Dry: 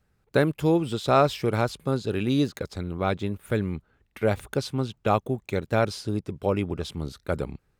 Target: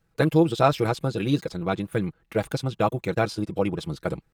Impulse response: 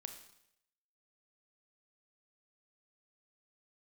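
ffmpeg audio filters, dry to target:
-af "aecho=1:1:6.1:0.61,atempo=1.8"

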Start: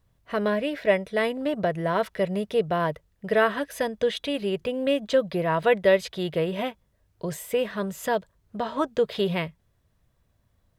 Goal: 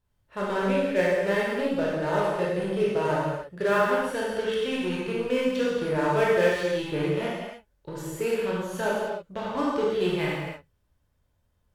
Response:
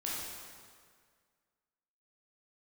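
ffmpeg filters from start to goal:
-filter_complex "[0:a]asplit=2[link_01][link_02];[link_02]acrusher=bits=3:mix=0:aa=0.5,volume=-6dB[link_03];[link_01][link_03]amix=inputs=2:normalize=0[link_04];[1:a]atrim=start_sample=2205,afade=type=out:start_time=0.35:duration=0.01,atrim=end_sample=15876[link_05];[link_04][link_05]afir=irnorm=-1:irlink=0,asetrate=40517,aresample=44100,volume=-6dB"

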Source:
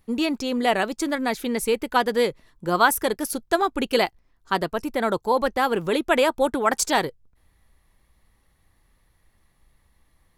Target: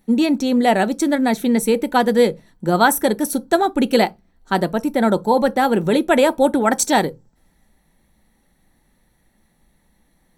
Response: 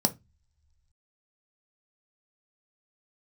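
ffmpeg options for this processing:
-filter_complex "[0:a]asplit=2[link_01][link_02];[1:a]atrim=start_sample=2205,lowshelf=frequency=230:gain=4.5,highshelf=frequency=6500:gain=8[link_03];[link_02][link_03]afir=irnorm=-1:irlink=0,volume=-13dB[link_04];[link_01][link_04]amix=inputs=2:normalize=0"

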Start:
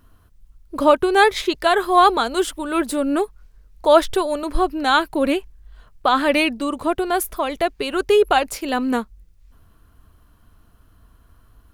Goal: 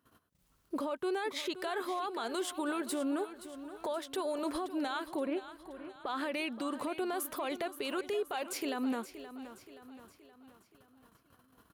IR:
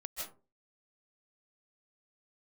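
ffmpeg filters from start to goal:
-filter_complex "[0:a]asettb=1/sr,asplit=3[link_01][link_02][link_03];[link_01]atrim=end=5.264[link_04];[link_02]atrim=start=5.26:end=6.06,asetpts=PTS-STARTPTS,afade=type=in:duration=0.004:curve=qsin,afade=type=out:start_time=0.796:duration=0.004:curve=qsin,lowpass=1900[link_05];[link_03]atrim=start=6.056[link_06];[link_04][link_05]acrossfade=duration=0.004:curve1=hsin:curve2=qsin[link_07];[link_07][link_06]acrossfade=duration=0.004:curve1=qsin:curve2=hsin,agate=range=-16dB:threshold=-49dB:ratio=16:detection=peak,highpass=200,acompressor=threshold=-28dB:ratio=10,alimiter=level_in=3.5dB:limit=-24dB:level=0:latency=1:release=35,volume=-3.5dB,aecho=1:1:524|1048|1572|2096|2620:0.224|0.11|0.0538|0.0263|0.0129"

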